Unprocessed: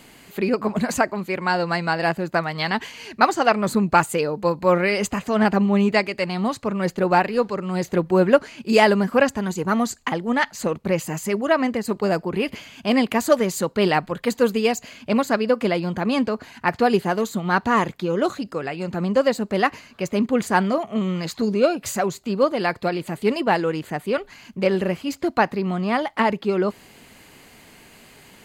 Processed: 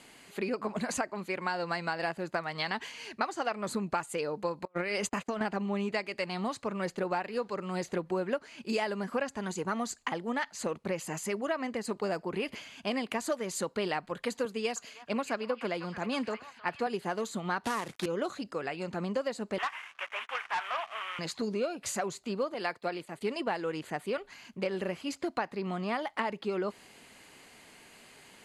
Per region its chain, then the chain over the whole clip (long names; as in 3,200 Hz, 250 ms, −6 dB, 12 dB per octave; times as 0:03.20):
0:04.65–0:05.41: compressor whose output falls as the input rises −22 dBFS, ratio −0.5 + noise gate −29 dBFS, range −28 dB
0:14.45–0:16.87: echo through a band-pass that steps 311 ms, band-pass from 1,200 Hz, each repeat 0.7 octaves, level −5.5 dB + multiband upward and downward expander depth 70%
0:17.64–0:18.06: log-companded quantiser 4 bits + multiband upward and downward compressor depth 70%
0:19.58–0:21.19: variable-slope delta modulation 16 kbit/s + high-pass filter 930 Hz 24 dB per octave + leveller curve on the samples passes 2
0:22.54–0:23.21: noise gate −39 dBFS, range −9 dB + low-shelf EQ 150 Hz −8.5 dB + multiband upward and downward expander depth 70%
whole clip: Butterworth low-pass 12,000 Hz 96 dB per octave; low-shelf EQ 220 Hz −9.5 dB; downward compressor 6 to 1, threshold −23 dBFS; level −5.5 dB